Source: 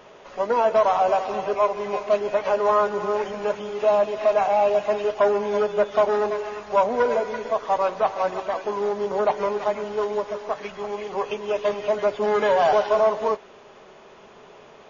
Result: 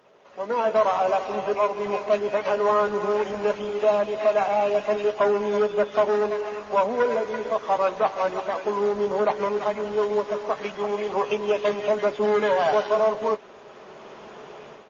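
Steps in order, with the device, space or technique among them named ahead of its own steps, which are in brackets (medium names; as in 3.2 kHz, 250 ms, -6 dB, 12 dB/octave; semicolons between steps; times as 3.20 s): doubling 14 ms -12.5 dB; dynamic bell 720 Hz, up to -4 dB, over -27 dBFS, Q 0.97; video call (high-pass 110 Hz 12 dB/octave; level rider gain up to 15.5 dB; trim -9 dB; Opus 24 kbps 48 kHz)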